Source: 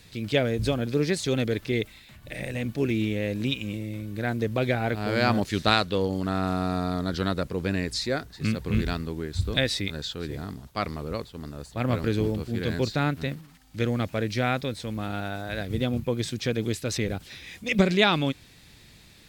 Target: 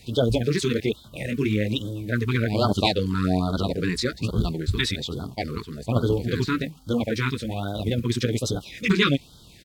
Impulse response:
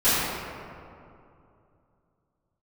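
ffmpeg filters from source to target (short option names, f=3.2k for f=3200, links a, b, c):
-af "flanger=delay=16:depth=6.4:speed=0.24,atempo=2,afftfilt=real='re*(1-between(b*sr/1024,620*pow(2200/620,0.5+0.5*sin(2*PI*1.2*pts/sr))/1.41,620*pow(2200/620,0.5+0.5*sin(2*PI*1.2*pts/sr))*1.41))':imag='im*(1-between(b*sr/1024,620*pow(2200/620,0.5+0.5*sin(2*PI*1.2*pts/sr))/1.41,620*pow(2200/620,0.5+0.5*sin(2*PI*1.2*pts/sr))*1.41))':win_size=1024:overlap=0.75,volume=6.5dB"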